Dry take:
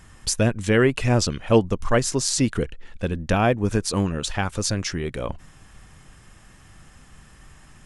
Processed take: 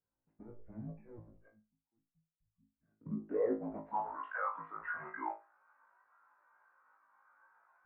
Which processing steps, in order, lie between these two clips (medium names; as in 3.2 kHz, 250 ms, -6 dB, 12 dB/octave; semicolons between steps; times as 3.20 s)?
spectral noise reduction 9 dB; hum notches 60/120/180/240/300 Hz; in parallel at 0 dB: compression, threshold -31 dBFS, peak gain reduction 18 dB; on the sum: peak limiter -14.5 dBFS, peak gain reduction 10 dB; 1.48–3.06 s: inverted gate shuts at -27 dBFS, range -31 dB; overload inside the chain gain 29.5 dB; band-pass sweep 230 Hz -> 1.4 kHz, 2.37–4.23 s; saturation -35.5 dBFS, distortion -14 dB; mistuned SSB -240 Hz 420–2600 Hz; on a send: flutter echo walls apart 3.2 m, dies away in 0.38 s; on the sum: spectral contrast expander 1.5:1; trim +5 dB